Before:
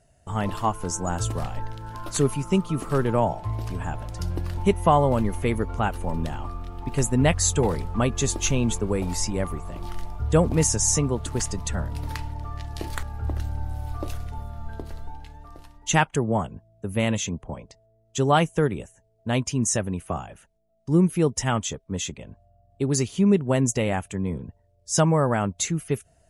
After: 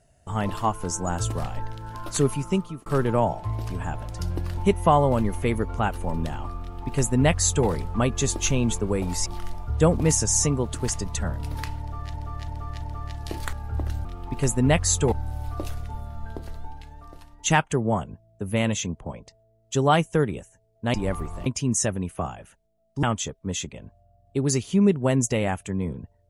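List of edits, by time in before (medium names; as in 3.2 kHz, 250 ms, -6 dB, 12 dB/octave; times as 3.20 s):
2.31–2.86 s: fade out equal-power
6.60–7.67 s: copy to 13.55 s
9.26–9.78 s: move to 19.37 s
12.32–12.66 s: loop, 4 plays
20.94–21.48 s: delete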